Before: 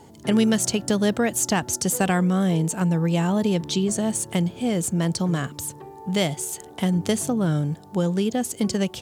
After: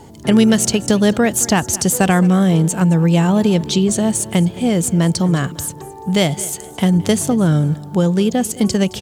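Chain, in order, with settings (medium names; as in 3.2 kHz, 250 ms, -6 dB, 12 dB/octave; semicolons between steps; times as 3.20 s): bass shelf 83 Hz +8 dB; feedback delay 216 ms, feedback 28%, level -19 dB; trim +6.5 dB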